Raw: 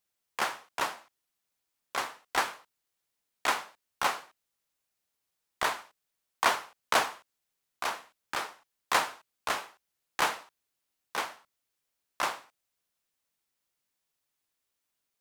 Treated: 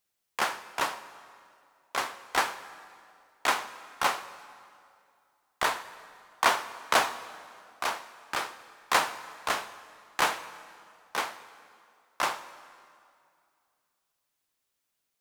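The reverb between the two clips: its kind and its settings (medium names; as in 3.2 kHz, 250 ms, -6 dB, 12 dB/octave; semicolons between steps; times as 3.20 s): plate-style reverb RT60 2.4 s, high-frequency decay 0.8×, DRR 13 dB; trim +2 dB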